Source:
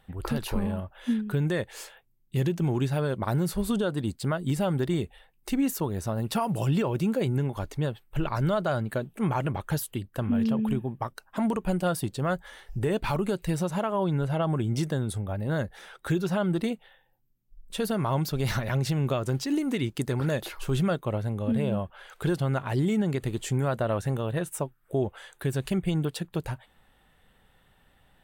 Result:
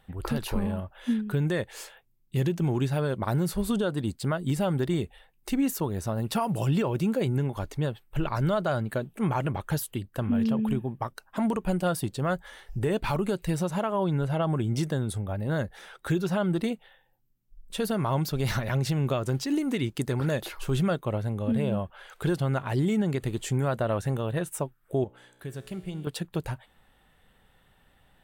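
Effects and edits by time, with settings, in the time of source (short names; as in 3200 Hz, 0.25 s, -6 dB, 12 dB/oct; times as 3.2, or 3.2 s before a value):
25.04–26.07 resonator 61 Hz, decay 1.9 s, mix 70%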